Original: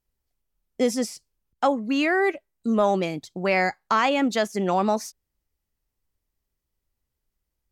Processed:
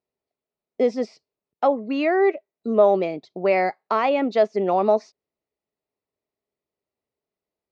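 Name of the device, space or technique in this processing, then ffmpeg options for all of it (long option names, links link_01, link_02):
kitchen radio: -af "highpass=200,equalizer=frequency=420:width_type=q:width=4:gain=8,equalizer=frequency=640:width_type=q:width=4:gain=8,equalizer=frequency=1600:width_type=q:width=4:gain=-7,equalizer=frequency=3200:width_type=q:width=4:gain=-7,lowpass=frequency=4100:width=0.5412,lowpass=frequency=4100:width=1.3066,volume=-1dB"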